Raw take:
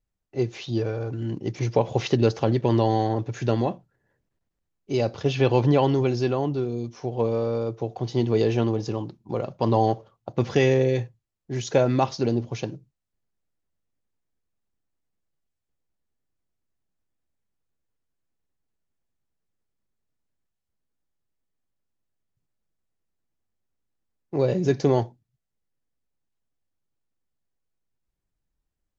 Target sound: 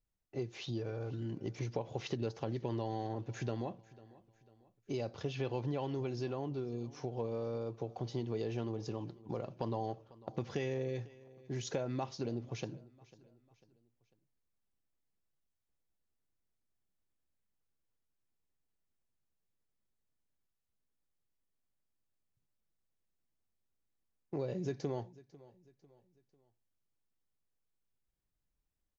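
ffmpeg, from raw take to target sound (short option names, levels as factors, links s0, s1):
-af "acompressor=threshold=0.0251:ratio=3,aecho=1:1:497|994|1491:0.0891|0.0383|0.0165,volume=0.531"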